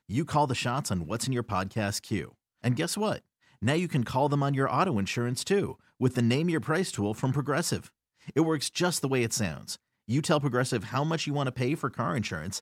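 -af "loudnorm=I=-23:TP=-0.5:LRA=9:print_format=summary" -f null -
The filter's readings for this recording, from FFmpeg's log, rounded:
Input Integrated:    -29.0 LUFS
Input True Peak:     -11.7 dBTP
Input LRA:             1.8 LU
Input Threshold:     -39.2 LUFS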